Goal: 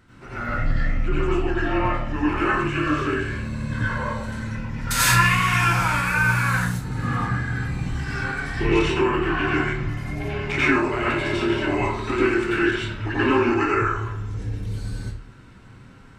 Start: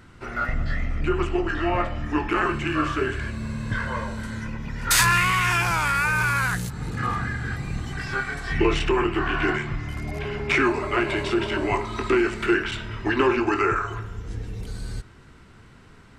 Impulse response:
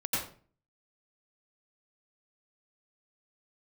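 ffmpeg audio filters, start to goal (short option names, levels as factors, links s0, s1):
-filter_complex "[1:a]atrim=start_sample=2205[s0];[0:a][s0]afir=irnorm=-1:irlink=0,volume=0.531"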